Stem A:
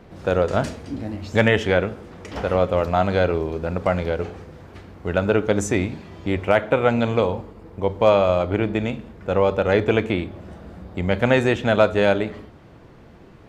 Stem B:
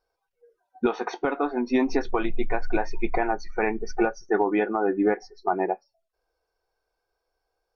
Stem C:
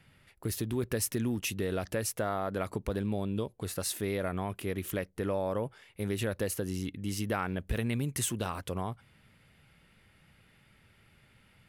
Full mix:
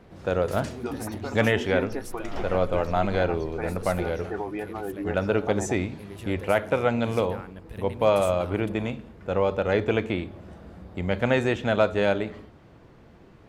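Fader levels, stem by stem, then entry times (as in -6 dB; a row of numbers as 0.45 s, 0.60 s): -5.0 dB, -9.5 dB, -9.5 dB; 0.00 s, 0.00 s, 0.00 s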